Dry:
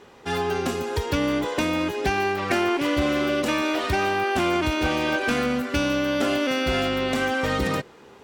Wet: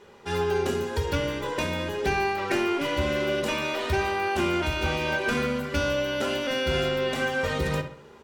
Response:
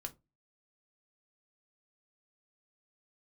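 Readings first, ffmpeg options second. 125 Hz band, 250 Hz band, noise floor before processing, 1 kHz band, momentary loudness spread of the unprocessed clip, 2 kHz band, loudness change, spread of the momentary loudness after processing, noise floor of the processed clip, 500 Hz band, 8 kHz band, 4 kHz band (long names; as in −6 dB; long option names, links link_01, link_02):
0.0 dB, −6.5 dB, −49 dBFS, −3.5 dB, 3 LU, −2.5 dB, −3.0 dB, 3 LU, −49 dBFS, −1.5 dB, −3.0 dB, −2.0 dB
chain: -filter_complex "[0:a]asplit=2[link_01][link_02];[link_02]adelay=67,lowpass=frequency=4000:poles=1,volume=-10dB,asplit=2[link_03][link_04];[link_04]adelay=67,lowpass=frequency=4000:poles=1,volume=0.44,asplit=2[link_05][link_06];[link_06]adelay=67,lowpass=frequency=4000:poles=1,volume=0.44,asplit=2[link_07][link_08];[link_08]adelay=67,lowpass=frequency=4000:poles=1,volume=0.44,asplit=2[link_09][link_10];[link_10]adelay=67,lowpass=frequency=4000:poles=1,volume=0.44[link_11];[link_01][link_03][link_05][link_07][link_09][link_11]amix=inputs=6:normalize=0[link_12];[1:a]atrim=start_sample=2205[link_13];[link_12][link_13]afir=irnorm=-1:irlink=0"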